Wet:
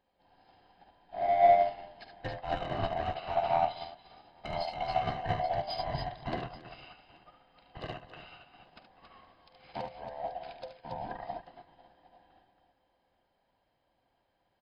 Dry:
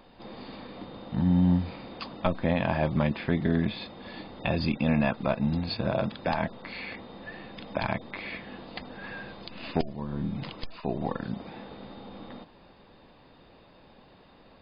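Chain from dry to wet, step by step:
neighbouring bands swapped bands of 500 Hz
soft clipping −19 dBFS, distortion −15 dB
brickwall limiter −23.5 dBFS, peak gain reduction 4 dB
on a send: multi-tap delay 47/73/277/473/833 ms −10/−4.5/−5/−16/−13 dB
on the sum: expander for the loud parts 2.5 to 1, over −41 dBFS
level +5 dB

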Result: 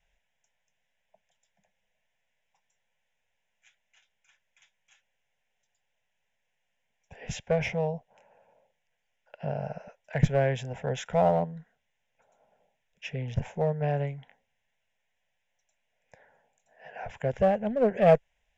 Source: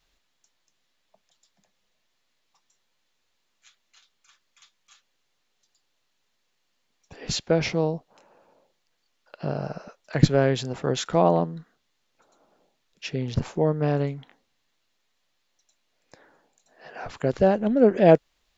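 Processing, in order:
low-pass filter 6,700 Hz 12 dB per octave
phaser with its sweep stopped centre 1,200 Hz, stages 6
in parallel at −4.5 dB: asymmetric clip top −25.5 dBFS
on the sum: level −5 dB

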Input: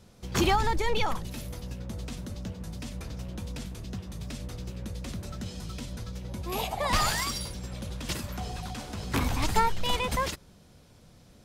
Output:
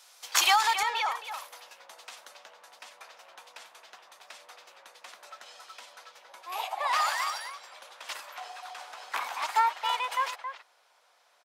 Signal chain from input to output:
high-pass filter 790 Hz 24 dB per octave
high-shelf EQ 2,800 Hz +6 dB, from 0:00.83 −7 dB, from 0:02.37 −12 dB
far-end echo of a speakerphone 270 ms, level −9 dB
level +4 dB

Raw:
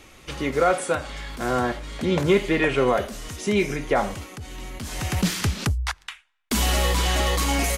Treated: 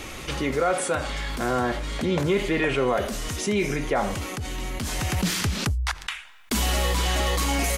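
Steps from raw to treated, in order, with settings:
envelope flattener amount 50%
level −5 dB

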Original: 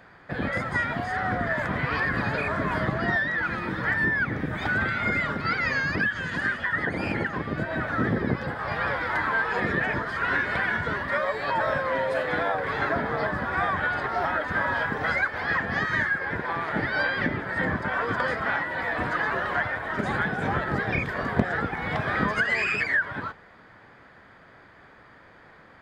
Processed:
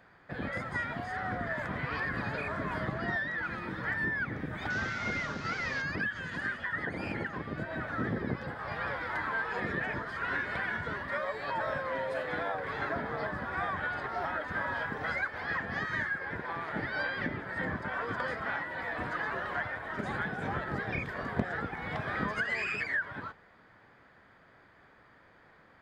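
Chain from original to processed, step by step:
0:04.70–0:05.82: linear delta modulator 32 kbit/s, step −31.5 dBFS
level −8 dB

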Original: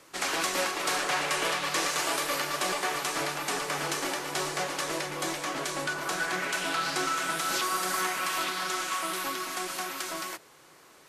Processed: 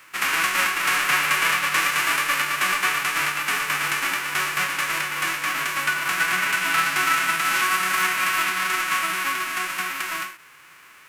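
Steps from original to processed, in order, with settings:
spectral envelope flattened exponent 0.3
flat-topped bell 1,700 Hz +13.5 dB
every ending faded ahead of time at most 130 dB per second

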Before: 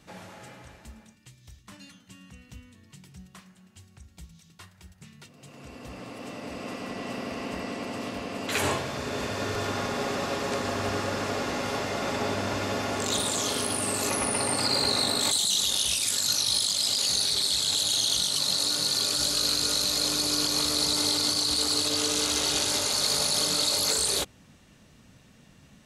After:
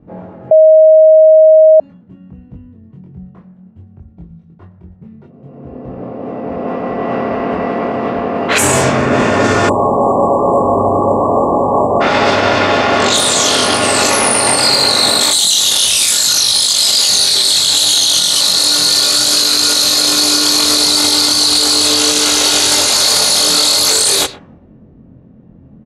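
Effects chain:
low-shelf EQ 230 Hz −9 dB
double-tracking delay 23 ms −2.5 dB
single-tap delay 125 ms −22 dB
0:09.69–0:12.01: time-frequency box erased 1,200–7,100 Hz
0:08.58–0:09.70: graphic EQ with 10 bands 125 Hz +5 dB, 250 Hz +6 dB, 4,000 Hz −9 dB, 8,000 Hz +11 dB
low-pass that shuts in the quiet parts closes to 320 Hz, open at −21.5 dBFS
0:00.51–0:01.80: beep over 630 Hz −19 dBFS
boost into a limiter +20.5 dB
level −1 dB

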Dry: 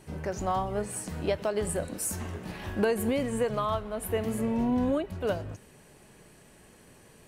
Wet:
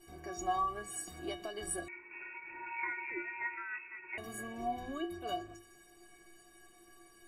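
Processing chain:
mains-hum notches 50/100/150/200/250/300/350 Hz
stiff-string resonator 340 Hz, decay 0.36 s, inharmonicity 0.03
0:01.88–0:04.18: voice inversion scrambler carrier 2,600 Hz
level +12 dB

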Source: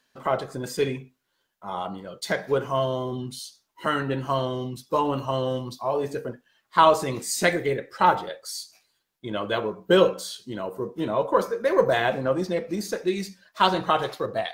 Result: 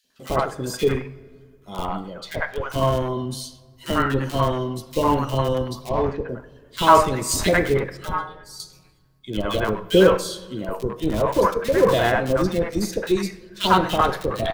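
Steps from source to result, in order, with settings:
0:02.21–0:02.70: three-way crossover with the lows and the highs turned down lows −22 dB, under 560 Hz, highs −17 dB, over 3,800 Hz
0:07.97–0:08.60: stiff-string resonator 150 Hz, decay 0.27 s, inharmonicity 0.002
in parallel at −4.5 dB: comparator with hysteresis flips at −21 dBFS
0:05.89–0:06.29: on the sum: high-frequency loss of the air 250 metres
three-band delay without the direct sound highs, lows, mids 40/100 ms, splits 680/2,400 Hz
convolution reverb RT60 1.8 s, pre-delay 10 ms, DRR 16 dB
level +4 dB

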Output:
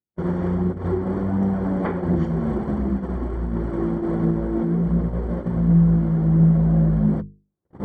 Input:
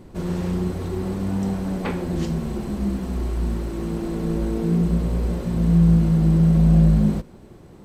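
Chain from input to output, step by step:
camcorder AGC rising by 30 dB per second
high-pass filter 75 Hz 12 dB per octave
noise gate −23 dBFS, range −54 dB
mains-hum notches 50/100/150/200/250/300/350/400/450 Hz
phase shifter 1.4 Hz, delay 3.9 ms, feedback 26%
Savitzky-Golay smoothing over 41 samples

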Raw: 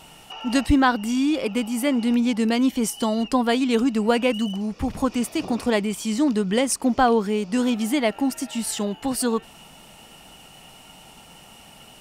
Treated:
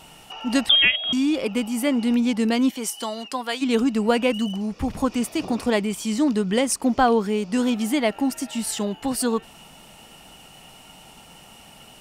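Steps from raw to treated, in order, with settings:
0:00.69–0:01.13: voice inversion scrambler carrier 3,500 Hz
0:02.70–0:03.61: high-pass filter 580 Hz → 1,500 Hz 6 dB per octave

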